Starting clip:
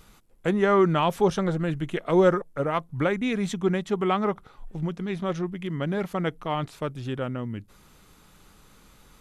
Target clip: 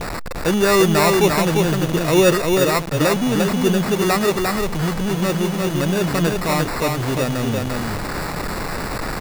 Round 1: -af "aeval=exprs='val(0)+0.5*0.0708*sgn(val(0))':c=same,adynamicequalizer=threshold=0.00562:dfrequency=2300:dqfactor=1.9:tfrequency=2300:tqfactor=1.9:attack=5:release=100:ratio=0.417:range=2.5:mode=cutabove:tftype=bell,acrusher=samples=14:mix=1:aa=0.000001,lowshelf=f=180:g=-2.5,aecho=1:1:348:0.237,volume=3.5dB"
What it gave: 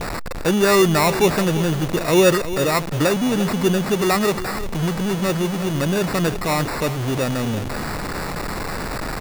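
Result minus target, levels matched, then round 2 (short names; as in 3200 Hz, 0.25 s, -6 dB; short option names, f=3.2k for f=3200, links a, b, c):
echo-to-direct -9 dB
-af "aeval=exprs='val(0)+0.5*0.0708*sgn(val(0))':c=same,adynamicequalizer=threshold=0.00562:dfrequency=2300:dqfactor=1.9:tfrequency=2300:tqfactor=1.9:attack=5:release=100:ratio=0.417:range=2.5:mode=cutabove:tftype=bell,acrusher=samples=14:mix=1:aa=0.000001,lowshelf=f=180:g=-2.5,aecho=1:1:348:0.668,volume=3.5dB"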